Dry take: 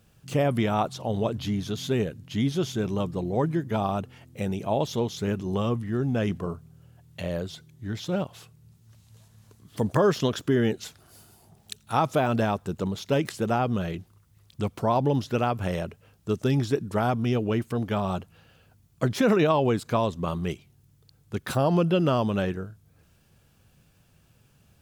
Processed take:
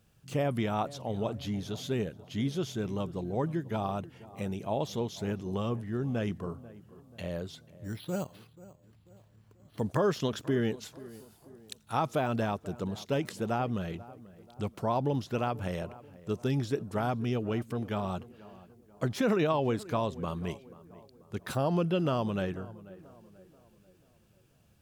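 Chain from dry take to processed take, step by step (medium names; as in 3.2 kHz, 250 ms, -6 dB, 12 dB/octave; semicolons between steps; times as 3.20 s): tape echo 487 ms, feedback 51%, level -17 dB, low-pass 1.4 kHz; 7.84–9.80 s: careless resampling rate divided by 6×, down filtered, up hold; trim -6 dB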